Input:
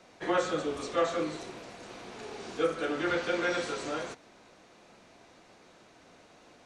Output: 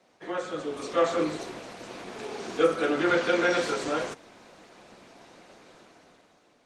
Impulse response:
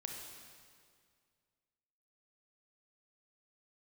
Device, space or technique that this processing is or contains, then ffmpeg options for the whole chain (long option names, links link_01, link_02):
video call: -filter_complex "[0:a]asettb=1/sr,asplit=3[link_01][link_02][link_03];[link_01]atrim=end=1.924[link_04];[link_02]atrim=start=1.92:end=2.85,asetpts=PTS-STARTPTS,afade=type=in:duration=0.004:curve=qsin,afade=type=out:start_time=0.926:duration=0.004:curve=qsin,highpass=76[link_05];[link_03]atrim=start=2.846[link_06];[link_04][link_05]acrossfade=duration=0.004:curve1=hsin:curve2=qsin[link_07];[link_07][link_06]acrossfade=duration=0.004:curve1=qsin:curve2=hsin,highpass=130,dynaudnorm=framelen=180:gausssize=9:maxgain=12dB,volume=-5dB" -ar 48000 -c:a libopus -b:a 20k